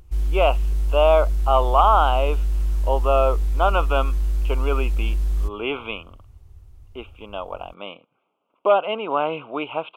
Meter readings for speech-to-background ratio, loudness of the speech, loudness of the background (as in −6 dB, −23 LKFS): 3.0 dB, −22.0 LKFS, −25.0 LKFS